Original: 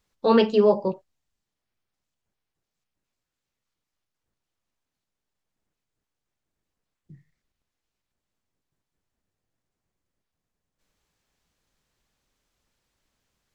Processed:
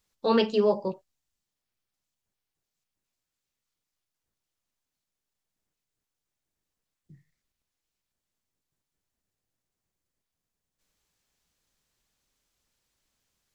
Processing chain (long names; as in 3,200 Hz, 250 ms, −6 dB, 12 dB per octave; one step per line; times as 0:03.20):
high-shelf EQ 3,400 Hz +8 dB
level −5 dB